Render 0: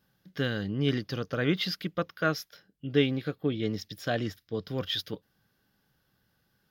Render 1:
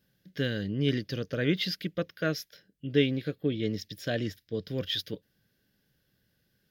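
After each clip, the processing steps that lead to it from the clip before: band shelf 1000 Hz -10 dB 1.1 oct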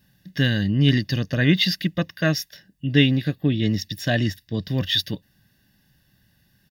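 comb 1.1 ms, depth 68%; gain +8.5 dB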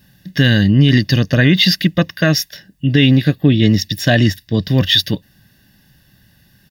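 maximiser +11 dB; gain -1 dB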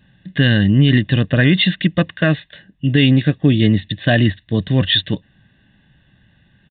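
downsampling 8000 Hz; gain -1.5 dB

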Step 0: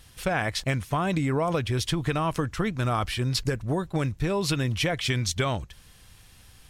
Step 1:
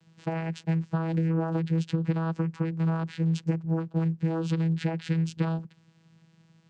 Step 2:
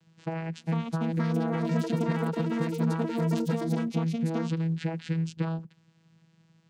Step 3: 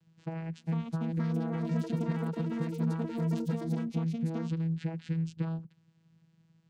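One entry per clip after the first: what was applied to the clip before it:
vocoder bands 8, saw 163 Hz
echoes that change speed 0.532 s, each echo +6 st, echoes 3; gain -2.5 dB
low shelf 180 Hz +10.5 dB; gain -8.5 dB

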